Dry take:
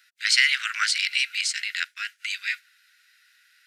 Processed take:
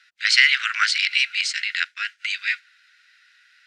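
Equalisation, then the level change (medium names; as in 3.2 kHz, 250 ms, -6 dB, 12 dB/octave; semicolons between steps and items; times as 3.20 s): distance through air 94 m; +5.5 dB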